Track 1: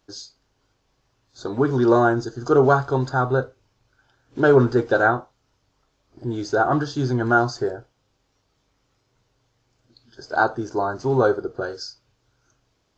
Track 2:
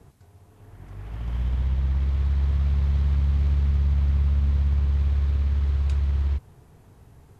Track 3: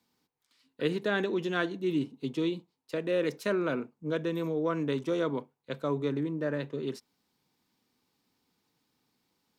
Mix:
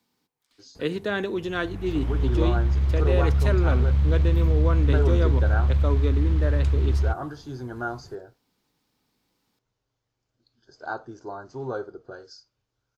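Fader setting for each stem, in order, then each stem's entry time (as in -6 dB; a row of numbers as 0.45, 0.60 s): -13.0, +1.5, +2.0 dB; 0.50, 0.75, 0.00 s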